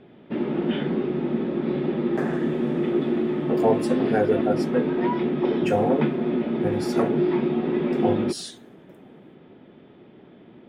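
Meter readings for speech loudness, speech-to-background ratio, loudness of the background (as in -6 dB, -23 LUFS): -28.0 LUFS, -3.5 dB, -24.5 LUFS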